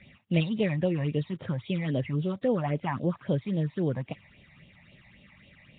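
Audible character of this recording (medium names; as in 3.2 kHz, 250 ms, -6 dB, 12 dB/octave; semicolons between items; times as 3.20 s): phasing stages 8, 3.7 Hz, lowest notch 400–1700 Hz; Nellymoser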